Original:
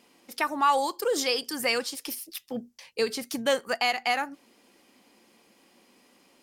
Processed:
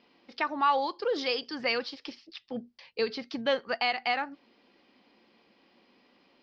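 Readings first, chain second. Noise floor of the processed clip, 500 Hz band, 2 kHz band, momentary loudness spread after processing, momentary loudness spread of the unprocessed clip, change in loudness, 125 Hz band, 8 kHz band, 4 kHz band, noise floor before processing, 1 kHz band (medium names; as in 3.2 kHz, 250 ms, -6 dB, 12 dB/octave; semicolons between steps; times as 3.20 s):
-66 dBFS, -2.5 dB, -2.5 dB, 15 LU, 13 LU, -2.5 dB, -2.5 dB, under -20 dB, -3.5 dB, -62 dBFS, -2.5 dB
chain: steep low-pass 4.9 kHz 48 dB/octave; trim -2.5 dB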